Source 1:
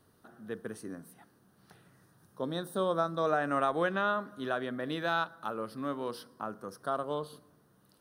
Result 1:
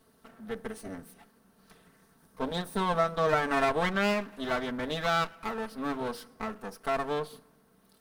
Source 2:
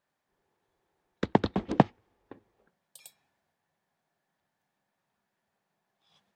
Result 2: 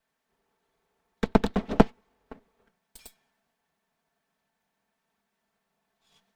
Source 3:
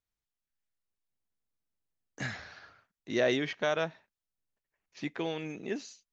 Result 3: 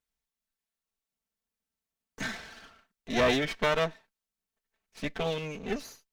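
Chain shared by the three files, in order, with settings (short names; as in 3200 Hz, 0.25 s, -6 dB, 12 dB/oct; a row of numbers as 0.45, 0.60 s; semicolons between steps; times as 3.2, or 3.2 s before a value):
minimum comb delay 4.5 ms; gain +3.5 dB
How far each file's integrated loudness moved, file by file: +3.0, +2.5, +3.0 LU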